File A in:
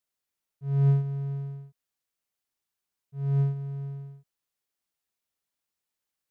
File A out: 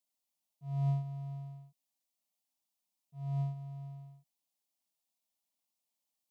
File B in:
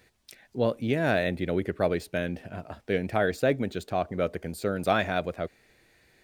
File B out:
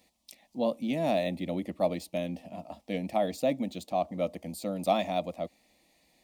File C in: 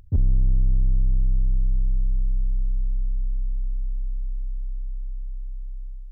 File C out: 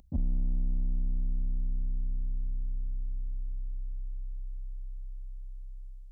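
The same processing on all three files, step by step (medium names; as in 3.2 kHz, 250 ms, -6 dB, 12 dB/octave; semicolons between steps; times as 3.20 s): high-pass 82 Hz 6 dB/octave; static phaser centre 410 Hz, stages 6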